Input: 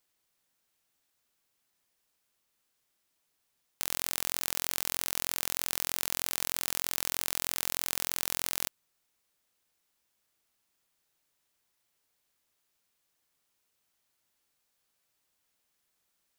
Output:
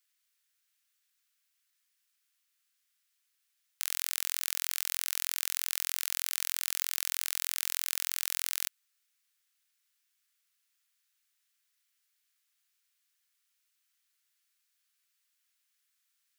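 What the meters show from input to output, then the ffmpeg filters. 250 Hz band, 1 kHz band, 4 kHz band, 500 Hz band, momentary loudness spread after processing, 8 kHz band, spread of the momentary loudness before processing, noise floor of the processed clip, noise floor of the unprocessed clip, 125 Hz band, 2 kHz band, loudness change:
under -40 dB, -8.5 dB, 0.0 dB, under -30 dB, 1 LU, 0.0 dB, 1 LU, -78 dBFS, -78 dBFS, under -40 dB, -0.5 dB, 0.0 dB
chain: -af "highpass=f=1400:w=0.5412,highpass=f=1400:w=1.3066"

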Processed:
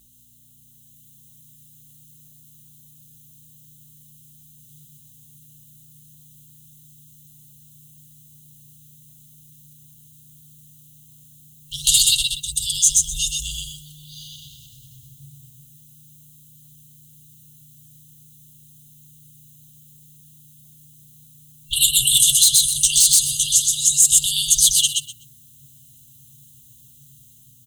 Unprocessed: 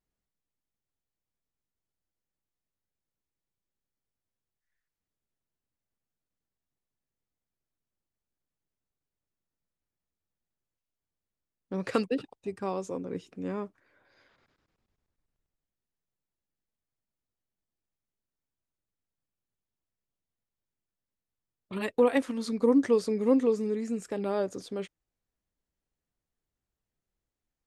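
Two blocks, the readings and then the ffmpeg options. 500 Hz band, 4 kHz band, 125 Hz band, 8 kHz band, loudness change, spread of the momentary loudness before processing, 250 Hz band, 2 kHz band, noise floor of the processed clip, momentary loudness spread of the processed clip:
under -40 dB, +31.0 dB, +7.0 dB, +39.0 dB, +14.5 dB, 14 LU, under -15 dB, +7.5 dB, -51 dBFS, 13 LU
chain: -filter_complex "[0:a]afftfilt=real='re*(1-between(b*sr/4096,130,2900))':imag='im*(1-between(b*sr/4096,130,2900))':win_size=4096:overlap=0.75,asubboost=boost=3.5:cutoff=79,afreqshift=-150,dynaudnorm=f=360:g=5:m=1.58,asoftclip=type=tanh:threshold=0.0251,aeval=exprs='val(0)+0.000158*(sin(2*PI*60*n/s)+sin(2*PI*2*60*n/s)/2+sin(2*PI*3*60*n/s)/3+sin(2*PI*4*60*n/s)/4+sin(2*PI*5*60*n/s)/5)':c=same,superequalizer=11b=0.282:14b=0.355,acrossover=split=280|3000[s0][s1][s2];[s1]acompressor=threshold=0.00158:ratio=6[s3];[s0][s3][s2]amix=inputs=3:normalize=0,crystalizer=i=9:c=0,aecho=1:1:5.5:0.38,aecho=1:1:125|250|375:0.668|0.12|0.0217,alimiter=level_in=7.94:limit=0.891:release=50:level=0:latency=1,volume=0.841"

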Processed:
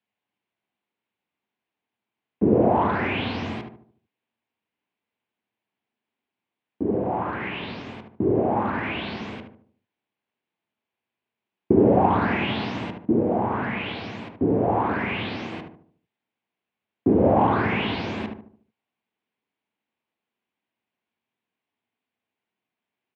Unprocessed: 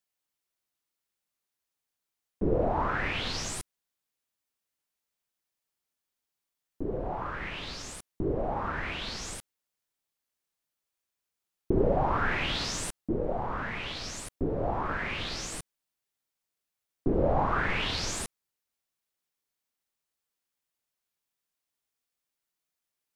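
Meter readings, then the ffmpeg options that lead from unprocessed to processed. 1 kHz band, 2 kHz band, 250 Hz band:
+7.5 dB, +3.5 dB, +11.5 dB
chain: -filter_complex "[0:a]asplit=2[s0][s1];[s1]adelay=74,lowpass=f=1100:p=1,volume=0.668,asplit=2[s2][s3];[s3]adelay=74,lowpass=f=1100:p=1,volume=0.45,asplit=2[s4][s5];[s5]adelay=74,lowpass=f=1100:p=1,volume=0.45,asplit=2[s6][s7];[s7]adelay=74,lowpass=f=1100:p=1,volume=0.45,asplit=2[s8][s9];[s9]adelay=74,lowpass=f=1100:p=1,volume=0.45,asplit=2[s10][s11];[s11]adelay=74,lowpass=f=1100:p=1,volume=0.45[s12];[s0][s2][s4][s6][s8][s10][s12]amix=inputs=7:normalize=0,acrossover=split=610|880[s13][s14][s15];[s15]asoftclip=type=hard:threshold=0.0251[s16];[s13][s14][s16]amix=inputs=3:normalize=0,highpass=f=100:w=0.5412,highpass=f=100:w=1.3066,equalizer=f=150:t=q:w=4:g=-7,equalizer=f=220:t=q:w=4:g=5,equalizer=f=550:t=q:w=4:g=-5,equalizer=f=1300:t=q:w=4:g=-8,equalizer=f=1800:t=q:w=4:g=-4,lowpass=f=2800:w=0.5412,lowpass=f=2800:w=1.3066,volume=2.82"

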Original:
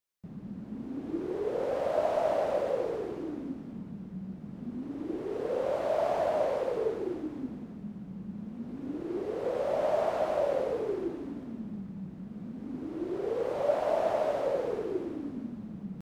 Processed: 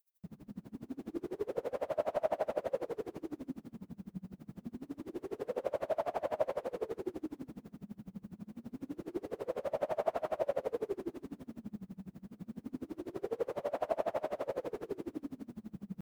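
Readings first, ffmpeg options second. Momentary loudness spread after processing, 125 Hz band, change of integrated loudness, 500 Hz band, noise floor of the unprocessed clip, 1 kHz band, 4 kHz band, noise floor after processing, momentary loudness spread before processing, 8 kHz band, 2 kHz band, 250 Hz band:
14 LU, -6.5 dB, -7.0 dB, -7.0 dB, -45 dBFS, -6.5 dB, -7.5 dB, -67 dBFS, 13 LU, no reading, -6.5 dB, -7.0 dB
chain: -filter_complex "[0:a]aemphasis=mode=production:type=50fm,acrossover=split=3000[s0][s1];[s1]acompressor=threshold=0.00126:ratio=4:attack=1:release=60[s2];[s0][s2]amix=inputs=2:normalize=0,aeval=exprs='val(0)*pow(10,-29*(0.5-0.5*cos(2*PI*12*n/s))/20)':c=same"

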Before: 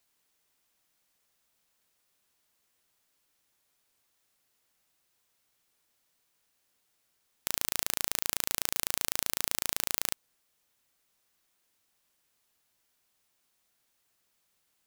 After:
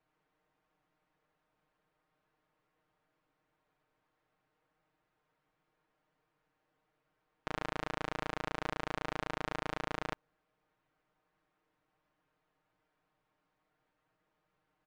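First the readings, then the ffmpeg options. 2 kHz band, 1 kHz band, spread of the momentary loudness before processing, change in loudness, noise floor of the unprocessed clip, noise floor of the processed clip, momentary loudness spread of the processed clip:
-1.0 dB, +4.5 dB, 5 LU, -9.0 dB, -75 dBFS, -82 dBFS, 5 LU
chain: -af "lowpass=1400,aecho=1:1:6.5:0.9,volume=1.41"

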